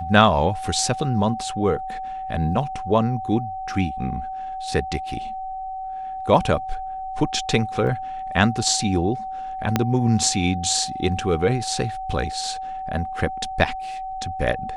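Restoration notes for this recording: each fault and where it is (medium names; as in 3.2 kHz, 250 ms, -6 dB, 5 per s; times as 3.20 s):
whine 760 Hz -28 dBFS
7.87 s: dropout 2 ms
9.76 s: pop -4 dBFS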